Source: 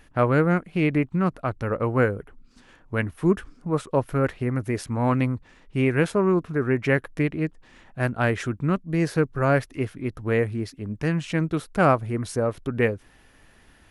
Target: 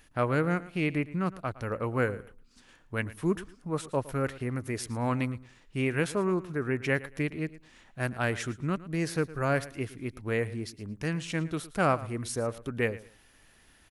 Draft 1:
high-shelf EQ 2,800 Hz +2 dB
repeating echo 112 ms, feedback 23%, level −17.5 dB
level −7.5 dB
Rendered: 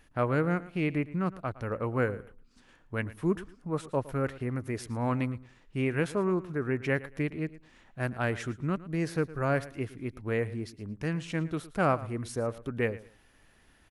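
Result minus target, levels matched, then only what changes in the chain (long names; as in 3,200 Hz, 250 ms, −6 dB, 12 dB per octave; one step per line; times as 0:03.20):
4,000 Hz band −4.0 dB
change: high-shelf EQ 2,800 Hz +9.5 dB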